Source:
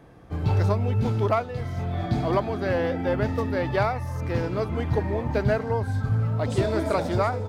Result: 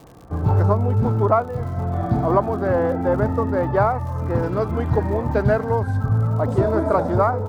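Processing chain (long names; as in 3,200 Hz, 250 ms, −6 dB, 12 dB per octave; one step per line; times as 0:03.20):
high shelf with overshoot 1,800 Hz −13.5 dB, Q 1.5, from 0:04.43 −7 dB, from 0:05.97 −13.5 dB
surface crackle 130 per second −42 dBFS
level +4.5 dB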